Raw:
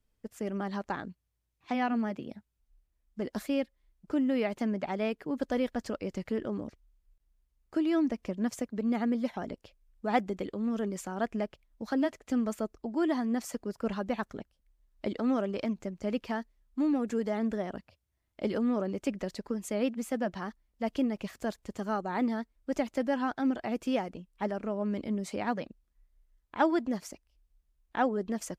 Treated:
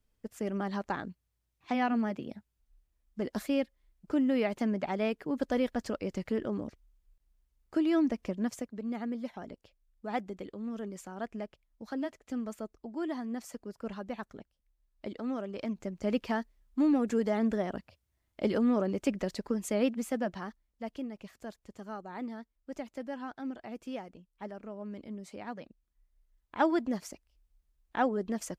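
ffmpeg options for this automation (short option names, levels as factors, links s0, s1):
-af "volume=7.94,afade=t=out:st=8.27:d=0.51:silence=0.446684,afade=t=in:st=15.5:d=0.63:silence=0.375837,afade=t=out:st=19.75:d=1.25:silence=0.266073,afade=t=in:st=25.54:d=1.17:silence=0.354813"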